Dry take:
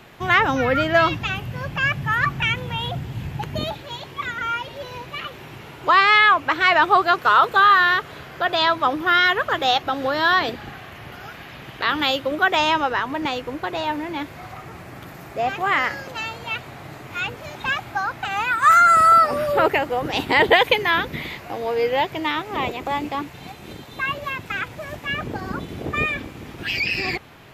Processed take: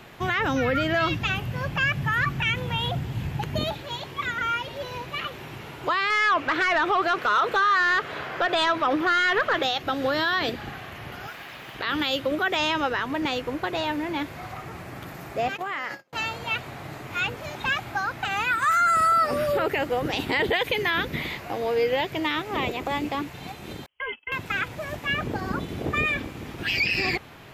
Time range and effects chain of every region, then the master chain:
6.1–9.63 high shelf 2900 Hz -11 dB + compressor, threshold -18 dBFS + overdrive pedal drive 15 dB, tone 6800 Hz, clips at -5.5 dBFS
11.27–11.75 low shelf 300 Hz -10.5 dB + companded quantiser 6-bit
15.48–16.13 HPF 160 Hz + gate -31 dBFS, range -35 dB + compressor 10:1, threshold -25 dBFS
23.86–24.32 gate -29 dBFS, range -38 dB + compressor 2.5:1, threshold -31 dBFS + inverted band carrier 3200 Hz
whole clip: dynamic EQ 910 Hz, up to -6 dB, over -30 dBFS, Q 1.4; limiter -15 dBFS

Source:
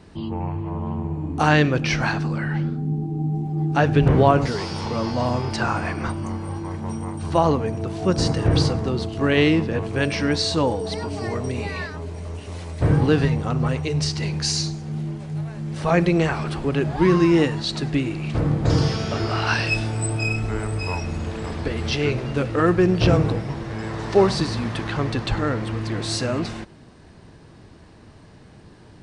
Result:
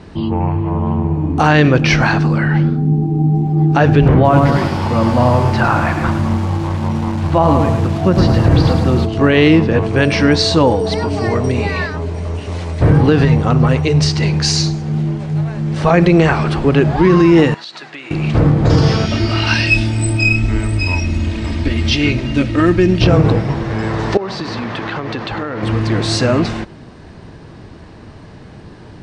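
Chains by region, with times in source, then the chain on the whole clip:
4.14–9.05 air absorption 200 m + notch 430 Hz, Q 5.1 + lo-fi delay 0.107 s, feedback 55%, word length 6-bit, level -6.5 dB
17.54–18.11 HPF 1400 Hz + tilt -3 dB/oct + compressor 5:1, threshold -36 dBFS
19.06–23.04 band shelf 760 Hz -9.5 dB 2.4 oct + comb 3.2 ms, depth 55%
24.17–25.63 HPF 330 Hz 6 dB/oct + compressor 20:1, threshold -27 dBFS + air absorption 82 m
whole clip: LPF 8300 Hz 12 dB/oct; high shelf 4800 Hz -5.5 dB; maximiser +11.5 dB; gain -1 dB

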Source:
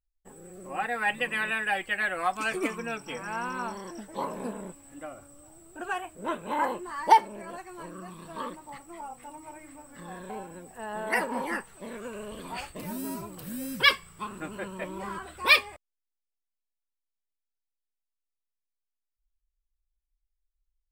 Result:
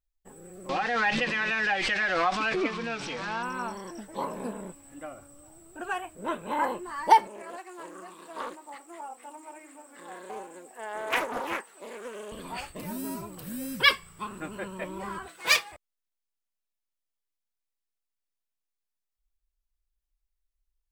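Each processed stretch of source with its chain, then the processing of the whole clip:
0.69–3.43 switching spikes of -26 dBFS + LPF 4400 Hz 24 dB/oct + backwards sustainer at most 28 dB/s
7.27–12.32 HPF 290 Hz 24 dB/oct + Doppler distortion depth 0.4 ms
15.28–15.72 minimum comb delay 6 ms + HPF 510 Hz 6 dB/oct
whole clip: dry

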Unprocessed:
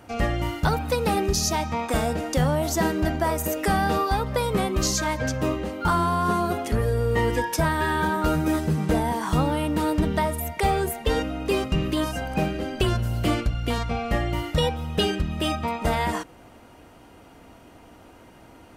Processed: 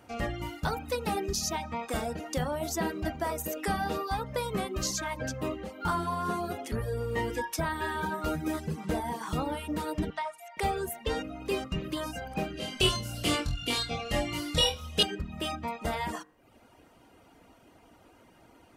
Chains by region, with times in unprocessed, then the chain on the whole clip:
10.1–10.57 steep high-pass 670 Hz + air absorption 85 m
12.57–15.03 band shelf 5500 Hz +9 dB 2.4 oct + flutter echo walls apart 4.1 m, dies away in 0.47 s
whole clip: low shelf 100 Hz -4.5 dB; de-hum 51.13 Hz, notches 39; reverb removal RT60 0.65 s; gain -6 dB

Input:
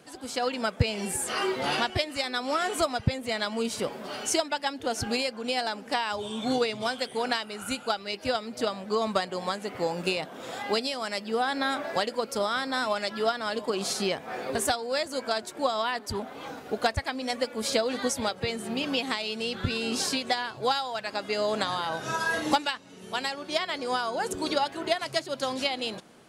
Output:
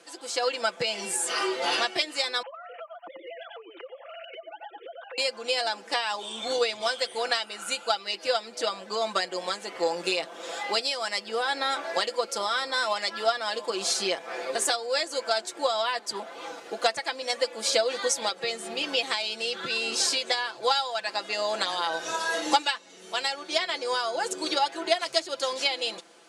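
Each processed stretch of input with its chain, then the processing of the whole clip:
2.42–5.18 sine-wave speech + echo 90 ms -9.5 dB + compressor 16:1, threshold -39 dBFS
whole clip: Chebyshev band-pass 360–7600 Hz, order 2; tilt +1.5 dB/oct; comb 5.9 ms, depth 65%

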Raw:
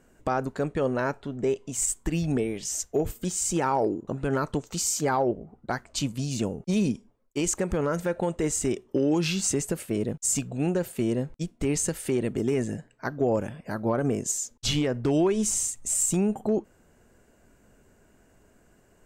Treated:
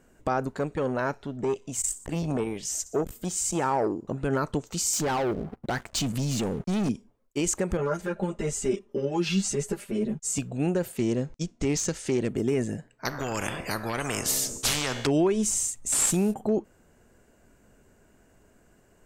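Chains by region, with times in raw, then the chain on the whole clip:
0.5–4.1 thin delay 61 ms, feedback 49%, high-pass 4100 Hz, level -16 dB + core saturation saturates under 430 Hz
4.93–6.89 sample leveller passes 3 + compressor 2.5:1, threshold -28 dBFS
7.77–10.38 high shelf 11000 Hz -11 dB + comb 5 ms, depth 73% + ensemble effect
10.97–12.29 self-modulated delay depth 0.064 ms + synth low-pass 6400 Hz, resonance Q 2.5
13.05–15.07 low shelf 370 Hz +10.5 dB + resonator 66 Hz, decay 0.97 s, mix 40% + spectral compressor 4:1
15.92–16.34 CVSD 64 kbps + high shelf 8400 Hz +10 dB
whole clip: dry

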